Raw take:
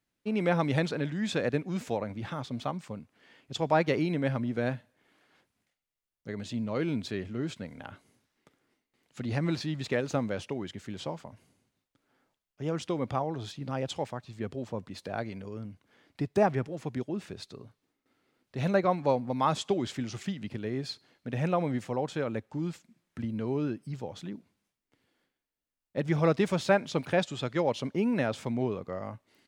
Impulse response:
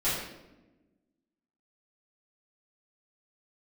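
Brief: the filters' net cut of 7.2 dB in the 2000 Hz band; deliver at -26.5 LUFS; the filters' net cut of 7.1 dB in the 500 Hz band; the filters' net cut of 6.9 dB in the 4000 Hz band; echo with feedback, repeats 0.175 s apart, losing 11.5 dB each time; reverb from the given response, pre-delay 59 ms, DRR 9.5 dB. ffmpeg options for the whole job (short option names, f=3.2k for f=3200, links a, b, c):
-filter_complex "[0:a]equalizer=f=500:t=o:g=-8.5,equalizer=f=2k:t=o:g=-7.5,equalizer=f=4k:t=o:g=-6,aecho=1:1:175|350|525:0.266|0.0718|0.0194,asplit=2[a][b];[1:a]atrim=start_sample=2205,adelay=59[c];[b][c]afir=irnorm=-1:irlink=0,volume=-19.5dB[d];[a][d]amix=inputs=2:normalize=0,volume=7.5dB"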